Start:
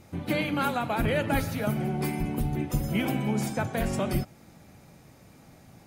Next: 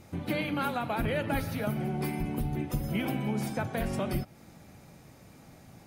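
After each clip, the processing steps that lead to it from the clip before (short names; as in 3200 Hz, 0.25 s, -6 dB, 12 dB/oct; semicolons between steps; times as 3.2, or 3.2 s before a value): dynamic EQ 7200 Hz, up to -7 dB, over -60 dBFS, Q 2.6; compressor 1.5:1, threshold -33 dBFS, peak gain reduction 4.5 dB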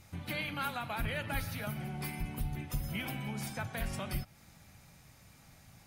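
bell 360 Hz -13.5 dB 2.4 oct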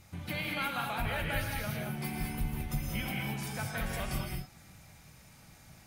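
non-linear reverb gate 0.24 s rising, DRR 0 dB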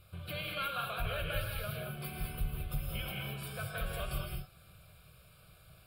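fixed phaser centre 1300 Hz, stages 8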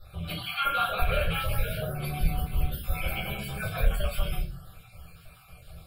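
random spectral dropouts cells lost 39%; shoebox room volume 130 m³, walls furnished, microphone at 4.2 m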